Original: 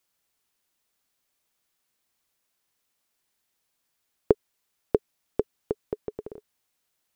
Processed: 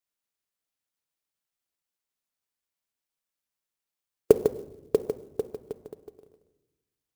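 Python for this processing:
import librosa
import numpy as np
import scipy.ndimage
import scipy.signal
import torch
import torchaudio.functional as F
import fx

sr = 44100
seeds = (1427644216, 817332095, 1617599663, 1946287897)

y = fx.bin_expand(x, sr, power=2.0)
y = scipy.signal.sosfilt(scipy.signal.butter(2, 56.0, 'highpass', fs=sr, output='sos'), y)
y = y + 10.0 ** (-7.0 / 20.0) * np.pad(y, (int(151 * sr / 1000.0), 0))[:len(y)]
y = fx.room_shoebox(y, sr, seeds[0], volume_m3=480.0, walls='mixed', distance_m=0.35)
y = fx.dynamic_eq(y, sr, hz=480.0, q=2.5, threshold_db=-39.0, ratio=4.0, max_db=5)
y = fx.clock_jitter(y, sr, seeds[1], jitter_ms=0.025)
y = F.gain(torch.from_numpy(y), 1.5).numpy()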